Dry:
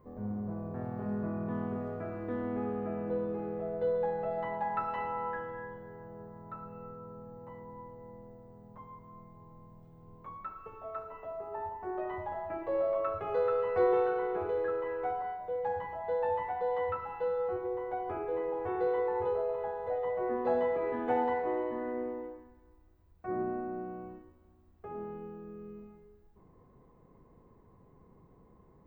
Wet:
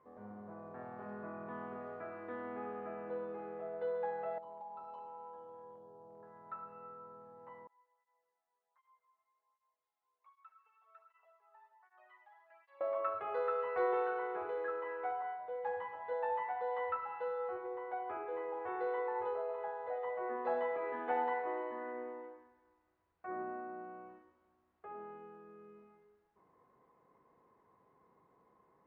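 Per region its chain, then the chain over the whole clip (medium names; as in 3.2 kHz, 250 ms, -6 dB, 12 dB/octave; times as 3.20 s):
4.38–6.23 s: Butterworth band-stop 1.9 kHz, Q 0.62 + compression 5:1, threshold -42 dBFS
7.67–12.81 s: high-pass 500 Hz + differentiator + cancelling through-zero flanger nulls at 1.3 Hz, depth 2.1 ms
15.64–16.13 s: band-stop 670 Hz, Q 5.4 + doubling 20 ms -5.5 dB
whole clip: low-pass 1.5 kHz 12 dB/octave; differentiator; trim +16 dB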